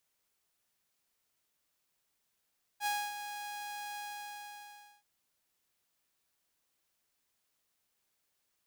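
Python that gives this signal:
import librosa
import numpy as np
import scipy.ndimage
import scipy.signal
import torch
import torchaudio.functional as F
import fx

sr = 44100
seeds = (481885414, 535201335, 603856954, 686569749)

y = fx.adsr_tone(sr, wave='saw', hz=826.0, attack_ms=59.0, decay_ms=260.0, sustain_db=-10.0, held_s=1.18, release_ms=1050.0, level_db=-27.5)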